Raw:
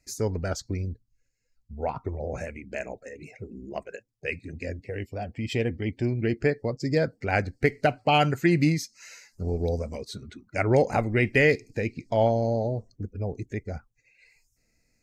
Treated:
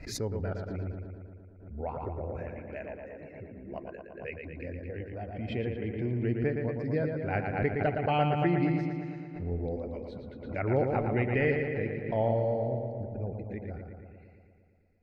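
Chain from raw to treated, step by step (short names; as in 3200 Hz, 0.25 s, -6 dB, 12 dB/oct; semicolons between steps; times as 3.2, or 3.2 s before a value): air absorption 420 m; darkening echo 0.115 s, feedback 71%, low-pass 4700 Hz, level -5 dB; backwards sustainer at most 73 dB/s; gain -6 dB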